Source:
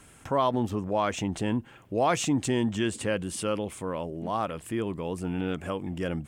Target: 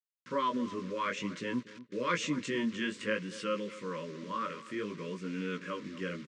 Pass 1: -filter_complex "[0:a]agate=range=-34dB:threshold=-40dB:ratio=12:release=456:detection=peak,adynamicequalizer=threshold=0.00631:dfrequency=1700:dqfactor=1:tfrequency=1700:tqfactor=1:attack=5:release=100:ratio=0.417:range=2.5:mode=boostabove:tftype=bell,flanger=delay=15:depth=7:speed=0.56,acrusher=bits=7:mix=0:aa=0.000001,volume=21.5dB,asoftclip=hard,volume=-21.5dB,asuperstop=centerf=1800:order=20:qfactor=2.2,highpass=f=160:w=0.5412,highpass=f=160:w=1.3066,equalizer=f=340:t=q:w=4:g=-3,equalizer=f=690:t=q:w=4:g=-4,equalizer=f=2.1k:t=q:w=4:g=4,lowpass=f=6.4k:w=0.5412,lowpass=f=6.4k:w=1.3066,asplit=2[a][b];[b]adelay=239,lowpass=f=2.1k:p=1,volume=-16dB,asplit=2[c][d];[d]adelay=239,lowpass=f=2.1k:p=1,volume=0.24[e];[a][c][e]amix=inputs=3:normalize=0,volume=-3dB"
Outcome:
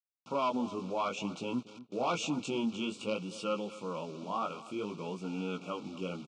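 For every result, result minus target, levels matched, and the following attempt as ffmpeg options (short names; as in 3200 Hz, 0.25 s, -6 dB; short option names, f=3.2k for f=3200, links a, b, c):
overloaded stage: distortion +28 dB; 2000 Hz band -6.5 dB
-filter_complex "[0:a]agate=range=-34dB:threshold=-40dB:ratio=12:release=456:detection=peak,adynamicequalizer=threshold=0.00631:dfrequency=1700:dqfactor=1:tfrequency=1700:tqfactor=1:attack=5:release=100:ratio=0.417:range=2.5:mode=boostabove:tftype=bell,flanger=delay=15:depth=7:speed=0.56,acrusher=bits=7:mix=0:aa=0.000001,volume=15dB,asoftclip=hard,volume=-15dB,asuperstop=centerf=1800:order=20:qfactor=2.2,highpass=f=160:w=0.5412,highpass=f=160:w=1.3066,equalizer=f=340:t=q:w=4:g=-3,equalizer=f=690:t=q:w=4:g=-4,equalizer=f=2.1k:t=q:w=4:g=4,lowpass=f=6.4k:w=0.5412,lowpass=f=6.4k:w=1.3066,asplit=2[a][b];[b]adelay=239,lowpass=f=2.1k:p=1,volume=-16dB,asplit=2[c][d];[d]adelay=239,lowpass=f=2.1k:p=1,volume=0.24[e];[a][c][e]amix=inputs=3:normalize=0,volume=-3dB"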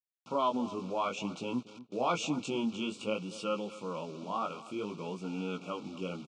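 2000 Hz band -6.5 dB
-filter_complex "[0:a]agate=range=-34dB:threshold=-40dB:ratio=12:release=456:detection=peak,adynamicequalizer=threshold=0.00631:dfrequency=1700:dqfactor=1:tfrequency=1700:tqfactor=1:attack=5:release=100:ratio=0.417:range=2.5:mode=boostabove:tftype=bell,flanger=delay=15:depth=7:speed=0.56,acrusher=bits=7:mix=0:aa=0.000001,volume=15dB,asoftclip=hard,volume=-15dB,asuperstop=centerf=760:order=20:qfactor=2.2,highpass=f=160:w=0.5412,highpass=f=160:w=1.3066,equalizer=f=340:t=q:w=4:g=-3,equalizer=f=690:t=q:w=4:g=-4,equalizer=f=2.1k:t=q:w=4:g=4,lowpass=f=6.4k:w=0.5412,lowpass=f=6.4k:w=1.3066,asplit=2[a][b];[b]adelay=239,lowpass=f=2.1k:p=1,volume=-16dB,asplit=2[c][d];[d]adelay=239,lowpass=f=2.1k:p=1,volume=0.24[e];[a][c][e]amix=inputs=3:normalize=0,volume=-3dB"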